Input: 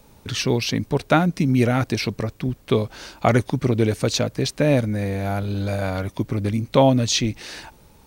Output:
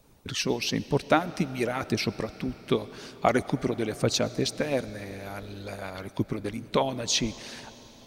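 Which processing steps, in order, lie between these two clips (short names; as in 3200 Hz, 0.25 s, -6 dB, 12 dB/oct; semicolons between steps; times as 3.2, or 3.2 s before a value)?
harmonic-percussive split harmonic -16 dB; on a send: reverb RT60 4.6 s, pre-delay 55 ms, DRR 16 dB; on the sum: gain -3 dB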